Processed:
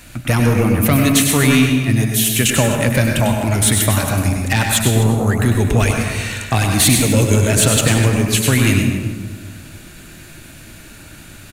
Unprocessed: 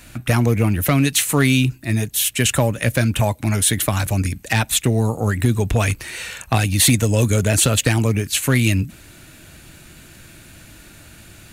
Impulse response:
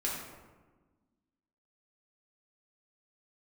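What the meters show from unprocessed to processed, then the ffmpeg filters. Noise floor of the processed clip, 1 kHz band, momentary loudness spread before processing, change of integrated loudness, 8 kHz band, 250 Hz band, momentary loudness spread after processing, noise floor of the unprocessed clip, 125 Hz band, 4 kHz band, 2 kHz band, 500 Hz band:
−39 dBFS, +3.5 dB, 6 LU, +3.5 dB, +3.5 dB, +4.5 dB, 7 LU, −45 dBFS, +3.0 dB, +3.0 dB, +3.5 dB, +3.5 dB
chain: -filter_complex "[0:a]acontrast=50,aecho=1:1:251:0.168,asplit=2[link_01][link_02];[1:a]atrim=start_sample=2205,adelay=97[link_03];[link_02][link_03]afir=irnorm=-1:irlink=0,volume=-6.5dB[link_04];[link_01][link_04]amix=inputs=2:normalize=0,volume=-3.5dB"

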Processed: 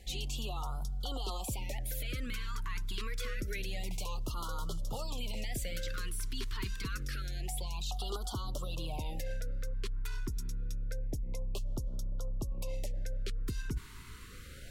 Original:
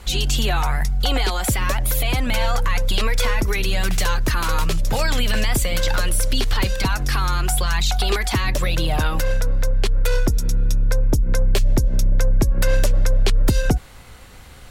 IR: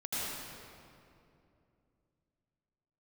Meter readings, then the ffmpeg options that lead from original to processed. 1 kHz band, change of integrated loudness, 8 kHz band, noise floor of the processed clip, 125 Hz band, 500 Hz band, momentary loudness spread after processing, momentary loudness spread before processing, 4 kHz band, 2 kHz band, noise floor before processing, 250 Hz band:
−19.0 dB, −18.5 dB, −17.5 dB, −47 dBFS, −18.0 dB, −19.0 dB, 3 LU, 2 LU, −17.5 dB, −20.0 dB, −40 dBFS, −18.0 dB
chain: -af "areverse,acompressor=threshold=-27dB:ratio=12,areverse,afftfilt=real='re*(1-between(b*sr/1024,620*pow(2100/620,0.5+0.5*sin(2*PI*0.27*pts/sr))/1.41,620*pow(2100/620,0.5+0.5*sin(2*PI*0.27*pts/sr))*1.41))':imag='im*(1-between(b*sr/1024,620*pow(2100/620,0.5+0.5*sin(2*PI*0.27*pts/sr))/1.41,620*pow(2100/620,0.5+0.5*sin(2*PI*0.27*pts/sr))*1.41))':win_size=1024:overlap=0.75,volume=-6dB"

